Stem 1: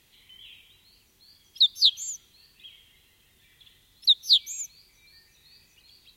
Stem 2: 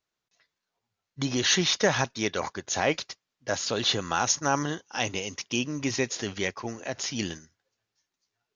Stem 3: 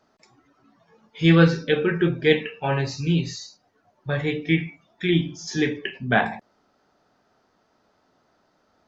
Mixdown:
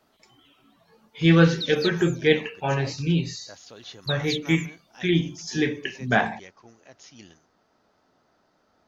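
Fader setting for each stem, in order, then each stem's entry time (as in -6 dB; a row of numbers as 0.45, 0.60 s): -12.5, -17.0, -1.0 dB; 0.00, 0.00, 0.00 s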